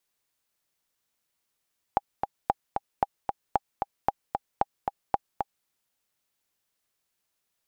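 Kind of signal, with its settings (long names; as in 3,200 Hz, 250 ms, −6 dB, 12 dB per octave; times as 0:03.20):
click track 227 BPM, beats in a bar 2, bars 7, 806 Hz, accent 5 dB −8.5 dBFS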